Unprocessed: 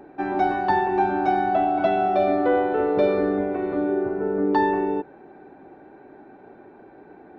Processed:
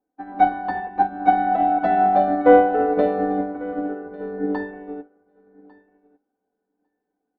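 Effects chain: LPF 1400 Hz 6 dB/oct; notches 50/100/150/200/250/300 Hz; comb 4 ms, depth 89%; on a send: feedback echo 1.149 s, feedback 25%, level -10 dB; on the sum: upward expander 2.5:1, over -41 dBFS; gain +5.5 dB

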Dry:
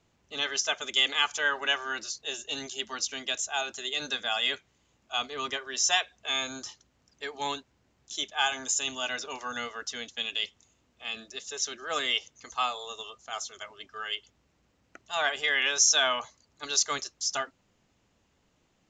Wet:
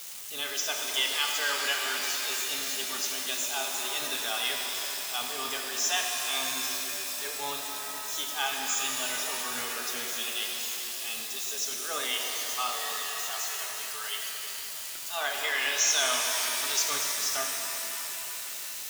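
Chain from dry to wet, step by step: switching spikes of -26 dBFS; spectral gate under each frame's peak -30 dB strong; shimmer reverb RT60 3.9 s, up +7 st, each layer -2 dB, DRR 1 dB; gain -5 dB

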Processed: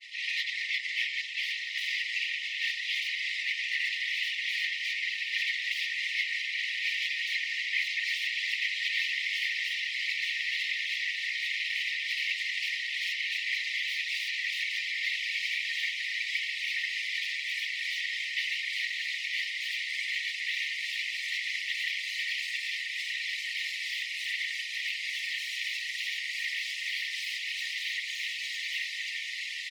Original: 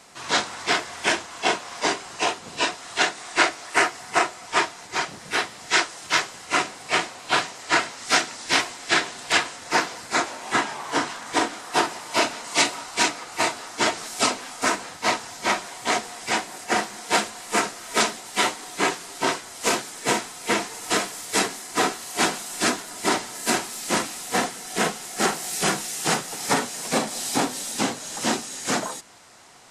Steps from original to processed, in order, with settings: comb 5.7 ms, depth 65%; in parallel at -2 dB: compressor, threshold -31 dBFS, peak gain reduction 18 dB; on the sum: grains 0.1 s, grains 20/s; hard clip -20.5 dBFS, distortion -7 dB; tremolo 3.3 Hz, depth 58%; diffused feedback echo 1.282 s, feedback 73%, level -7 dB; sine folder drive 9 dB, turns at -17.5 dBFS; whisperiser; brick-wall FIR high-pass 1800 Hz; air absorption 340 m

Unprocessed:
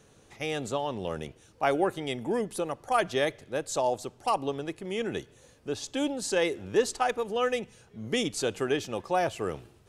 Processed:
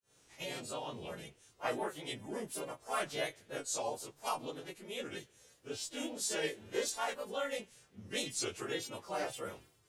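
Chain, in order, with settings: frequency quantiser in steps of 2 st; grains 0.258 s, grains 28/s, spray 22 ms, pitch spread up and down by 3 st; gain -4 dB

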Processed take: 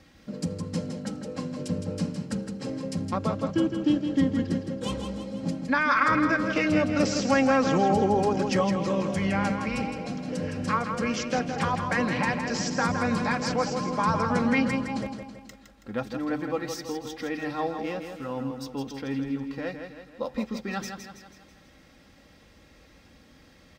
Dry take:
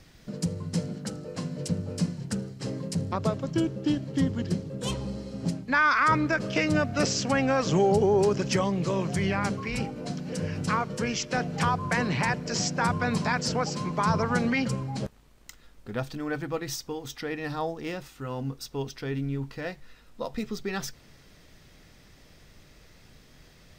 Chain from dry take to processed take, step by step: HPF 63 Hz; high shelf 4800 Hz -8.5 dB; comb 3.7 ms, depth 53%; on a send: feedback echo 0.163 s, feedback 49%, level -7 dB

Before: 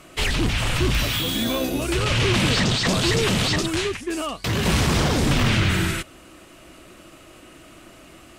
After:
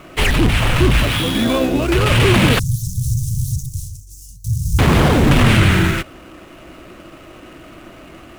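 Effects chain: median filter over 9 samples; 2.59–4.79 Chebyshev band-stop 130–5800 Hz, order 4; gain +8 dB

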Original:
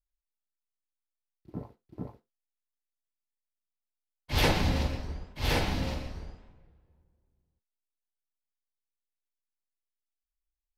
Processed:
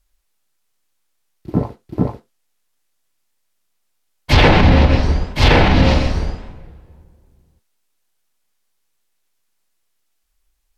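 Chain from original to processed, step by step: treble ducked by the level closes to 2900 Hz, closed at -24 dBFS; maximiser +22.5 dB; gain -1 dB

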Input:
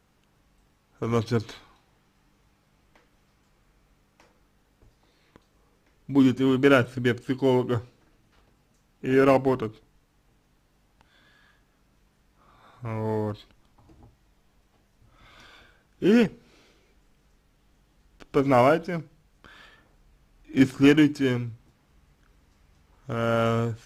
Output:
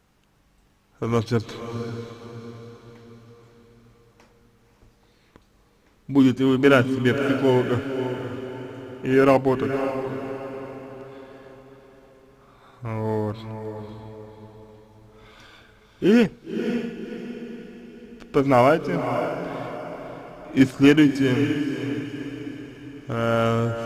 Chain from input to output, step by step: diffused feedback echo 0.544 s, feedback 46%, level -8 dB; gain +2.5 dB

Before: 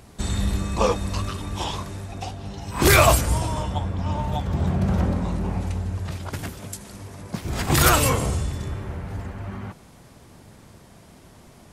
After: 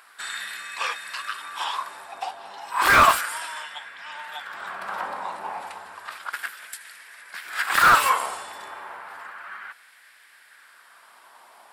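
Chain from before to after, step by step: LFO high-pass sine 0.32 Hz 880–1800 Hz; thirty-one-band EQ 125 Hz -11 dB, 1600 Hz +5 dB, 6300 Hz -11 dB; slew limiter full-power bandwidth 390 Hz

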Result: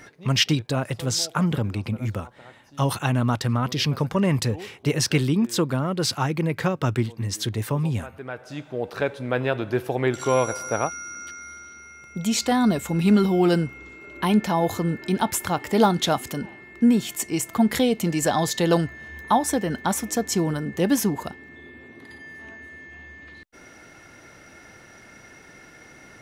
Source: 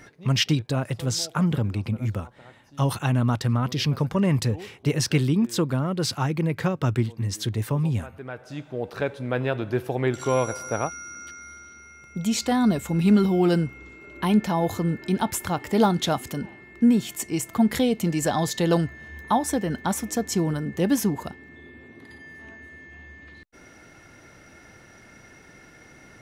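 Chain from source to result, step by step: low shelf 240 Hz -5 dB; gain +3 dB

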